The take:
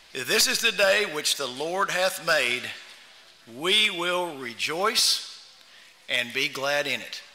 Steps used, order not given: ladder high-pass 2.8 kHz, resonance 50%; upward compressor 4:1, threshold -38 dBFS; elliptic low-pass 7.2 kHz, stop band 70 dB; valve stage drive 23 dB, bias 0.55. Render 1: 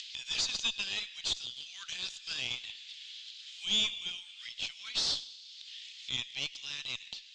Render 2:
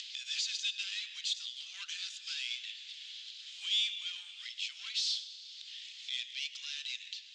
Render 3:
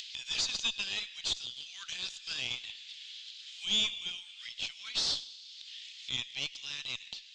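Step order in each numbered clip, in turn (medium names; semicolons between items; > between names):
ladder high-pass > valve stage > upward compressor > elliptic low-pass; valve stage > ladder high-pass > upward compressor > elliptic low-pass; ladder high-pass > valve stage > elliptic low-pass > upward compressor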